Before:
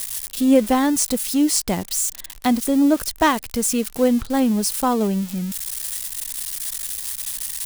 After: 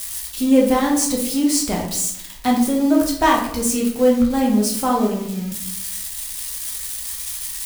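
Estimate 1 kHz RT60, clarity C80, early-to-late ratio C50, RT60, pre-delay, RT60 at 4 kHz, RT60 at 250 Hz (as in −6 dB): 0.70 s, 8.5 dB, 5.0 dB, 0.75 s, 8 ms, 0.50 s, 0.90 s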